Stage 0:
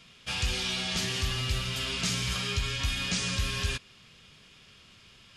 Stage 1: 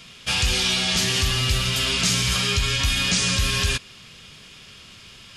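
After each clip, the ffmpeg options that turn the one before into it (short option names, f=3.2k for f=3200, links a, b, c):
-filter_complex "[0:a]highshelf=f=4.9k:g=5,asplit=2[a][b];[b]alimiter=limit=-22.5dB:level=0:latency=1,volume=2dB[c];[a][c]amix=inputs=2:normalize=0,volume=2dB"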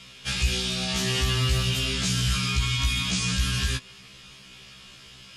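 -filter_complex "[0:a]acrossover=split=290[a][b];[b]acompressor=threshold=-26dB:ratio=2[c];[a][c]amix=inputs=2:normalize=0,afftfilt=real='re*1.73*eq(mod(b,3),0)':imag='im*1.73*eq(mod(b,3),0)':win_size=2048:overlap=0.75"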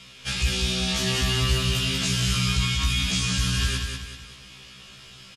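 -af "aecho=1:1:190|380|570|760|950:0.562|0.231|0.0945|0.0388|0.0159"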